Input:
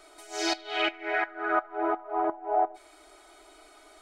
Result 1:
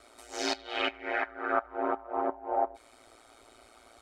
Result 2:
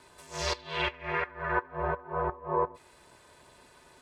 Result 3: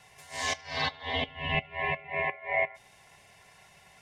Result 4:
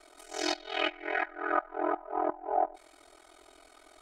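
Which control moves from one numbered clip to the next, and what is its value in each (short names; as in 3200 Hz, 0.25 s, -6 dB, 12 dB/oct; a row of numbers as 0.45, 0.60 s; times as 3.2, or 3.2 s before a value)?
ring modulator, frequency: 57, 260, 1400, 21 Hz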